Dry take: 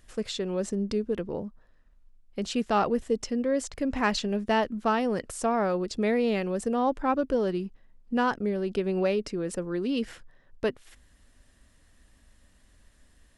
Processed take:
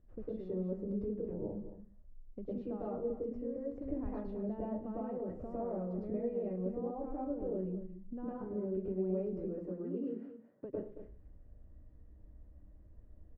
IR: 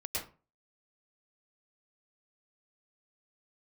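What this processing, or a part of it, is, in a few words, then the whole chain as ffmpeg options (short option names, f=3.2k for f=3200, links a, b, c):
television next door: -filter_complex "[0:a]asettb=1/sr,asplit=3[a][b][c];[a]atrim=end=9.514[d];[b]atrim=start=9.51:end=10.65,asetpts=PTS-STARTPTS,afade=t=in:d=0.004:c=qsin,afade=t=out:st=1.136:d=0.004:c=qsin,highpass=f=170:w=0.5412,highpass=f=170:w=1.3066[e];[c]atrim=start=10.646[f];[d][e]acrossfade=d=0.004:c1=hsin:c2=qsin[g];[g][f]acrossfade=d=0.004:c1=qsin:c2=hsin,acompressor=threshold=-36dB:ratio=4,lowpass=510[h];[1:a]atrim=start_sample=2205[i];[h][i]afir=irnorm=-1:irlink=0,aecho=1:1:224:0.266,volume=-2dB"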